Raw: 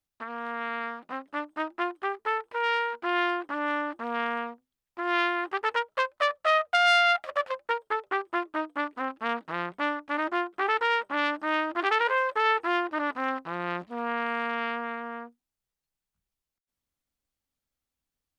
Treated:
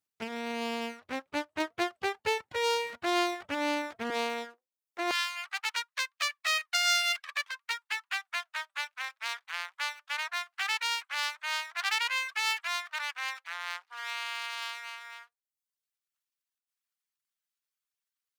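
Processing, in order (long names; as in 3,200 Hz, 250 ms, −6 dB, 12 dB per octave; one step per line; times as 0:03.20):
full-wave rectification
high-pass filter 76 Hz 24 dB per octave, from 0:04.10 280 Hz, from 0:05.11 1,100 Hz
reverb reduction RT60 0.64 s
level +2 dB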